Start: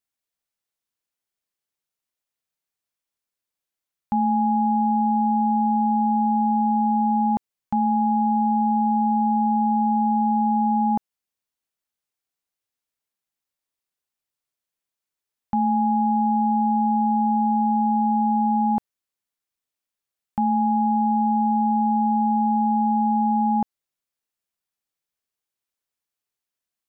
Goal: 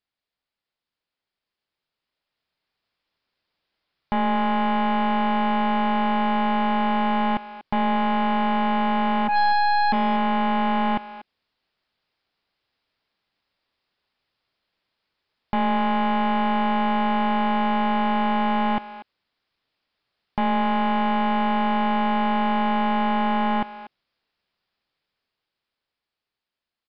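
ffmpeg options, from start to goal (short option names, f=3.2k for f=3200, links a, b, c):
-filter_complex "[0:a]asplit=3[a][b][c];[a]afade=t=out:st=9.27:d=0.02[d];[b]highpass=f=920:w=0.5412,highpass=f=920:w=1.3066,afade=t=in:st=9.27:d=0.02,afade=t=out:st=9.92:d=0.02[e];[c]afade=t=in:st=9.92:d=0.02[f];[d][e][f]amix=inputs=3:normalize=0,alimiter=level_in=1dB:limit=-24dB:level=0:latency=1:release=98,volume=-1dB,dynaudnorm=f=480:g=11:m=10.5dB,aeval=exprs='0.188*(cos(1*acos(clip(val(0)/0.188,-1,1)))-cos(1*PI/2))+0.075*(cos(2*acos(clip(val(0)/0.188,-1,1)))-cos(2*PI/2))+0.0168*(cos(3*acos(clip(val(0)/0.188,-1,1)))-cos(3*PI/2))+0.0299*(cos(5*acos(clip(val(0)/0.188,-1,1)))-cos(5*PI/2))':c=same,asoftclip=type=tanh:threshold=-11dB,asplit=2[g][h];[h]adelay=240,highpass=300,lowpass=3.4k,asoftclip=type=hard:threshold=-22dB,volume=-13dB[i];[g][i]amix=inputs=2:normalize=0,aresample=11025,aresample=44100"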